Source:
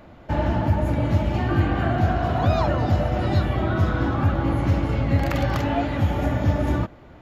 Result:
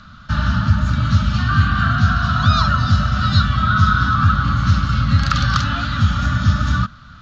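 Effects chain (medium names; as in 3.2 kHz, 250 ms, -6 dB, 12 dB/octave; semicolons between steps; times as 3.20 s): FFT filter 220 Hz 0 dB, 380 Hz -30 dB, 580 Hz -18 dB, 870 Hz -16 dB, 1.3 kHz +13 dB, 2.1 kHz -8 dB, 3.9 kHz +11 dB, 6.4 kHz +7 dB, 10 kHz -19 dB; trim +6 dB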